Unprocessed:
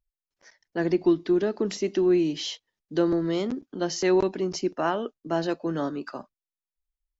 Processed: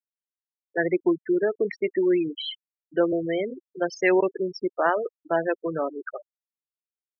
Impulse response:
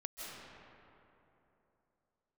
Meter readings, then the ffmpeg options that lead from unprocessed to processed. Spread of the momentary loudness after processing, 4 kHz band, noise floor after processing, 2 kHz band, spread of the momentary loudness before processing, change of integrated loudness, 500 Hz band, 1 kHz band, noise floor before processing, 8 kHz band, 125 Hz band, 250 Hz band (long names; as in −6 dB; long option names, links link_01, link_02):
11 LU, −2.0 dB, below −85 dBFS, +7.5 dB, 10 LU, +0.5 dB, +1.5 dB, +2.5 dB, below −85 dBFS, can't be measured, −5.5 dB, −1.5 dB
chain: -af "equalizer=frequency=250:width_type=o:width=1:gain=-9,equalizer=frequency=500:width_type=o:width=1:gain=7,equalizer=frequency=2000:width_type=o:width=1:gain=11,afftfilt=real='re*gte(hypot(re,im),0.1)':imag='im*gte(hypot(re,im),0.1)':win_size=1024:overlap=0.75"